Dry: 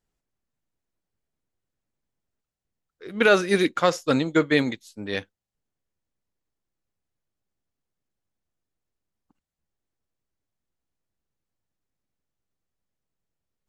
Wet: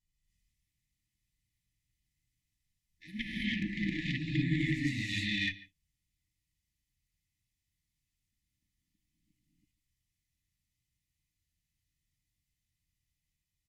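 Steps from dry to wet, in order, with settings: low-pass that closes with the level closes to 1 kHz, closed at -18 dBFS; comb 2 ms, depth 78%; compression 12:1, threshold -23 dBFS, peak gain reduction 13 dB; ever faster or slower copies 168 ms, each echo +1 st, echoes 3, each echo -6 dB; on a send: delay 144 ms -19 dB; on the sum: gated-style reverb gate 350 ms rising, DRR -7 dB; Chebyshev shaper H 3 -17 dB, 6 -32 dB, 7 -45 dB, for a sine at -8 dBFS; brick-wall FIR band-stop 320–1700 Hz

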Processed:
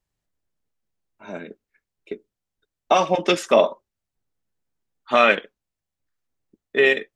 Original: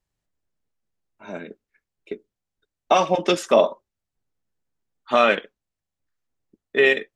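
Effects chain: 3.09–5.32 s: dynamic bell 2.1 kHz, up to +6 dB, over -35 dBFS, Q 1.7

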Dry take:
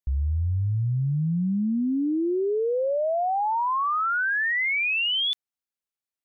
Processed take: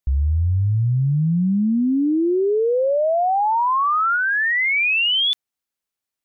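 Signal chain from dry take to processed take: 4.16–4.76 s: peaking EQ 770 Hz -12.5 dB 0.68 oct; trim +6 dB

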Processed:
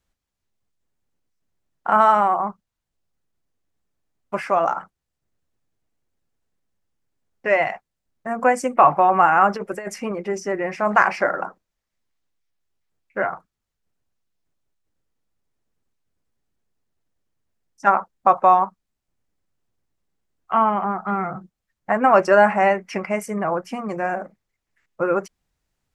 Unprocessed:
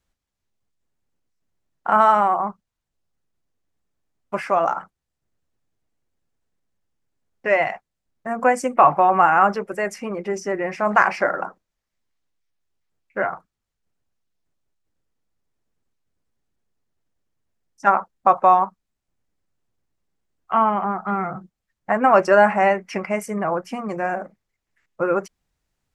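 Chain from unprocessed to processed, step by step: 9.54–10.12 s: compressor with a negative ratio -26 dBFS, ratio -0.5

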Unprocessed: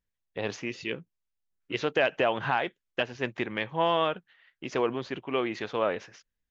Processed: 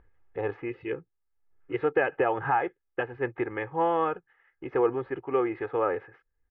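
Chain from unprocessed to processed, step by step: low-pass 1.8 kHz 24 dB/octave; comb 2.4 ms, depth 73%; upward compressor, threshold -45 dBFS

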